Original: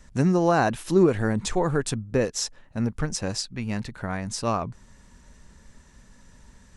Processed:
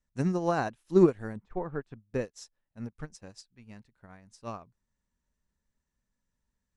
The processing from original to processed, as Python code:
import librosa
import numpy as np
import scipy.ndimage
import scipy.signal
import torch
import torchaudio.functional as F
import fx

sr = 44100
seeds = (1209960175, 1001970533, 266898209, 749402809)

y = fx.lowpass(x, sr, hz=fx.line((1.36, 1500.0), (2.01, 2900.0)), slope=12, at=(1.36, 2.01), fade=0.02)
y = fx.upward_expand(y, sr, threshold_db=-35.0, expansion=2.5)